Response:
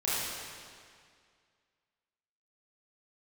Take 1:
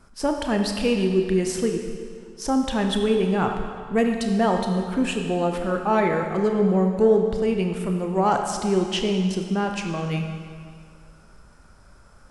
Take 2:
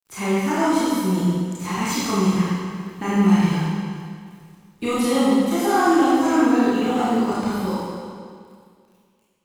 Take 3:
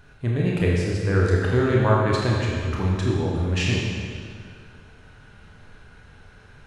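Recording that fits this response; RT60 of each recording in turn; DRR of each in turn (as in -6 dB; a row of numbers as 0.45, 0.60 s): 2; 2.1, 2.1, 2.1 s; 3.0, -10.0, -3.5 dB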